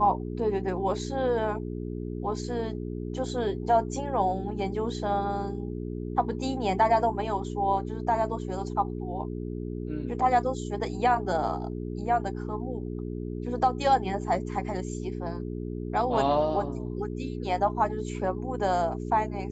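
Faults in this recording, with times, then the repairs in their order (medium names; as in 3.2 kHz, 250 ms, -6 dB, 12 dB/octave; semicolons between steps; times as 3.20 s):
hum 60 Hz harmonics 7 -34 dBFS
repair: de-hum 60 Hz, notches 7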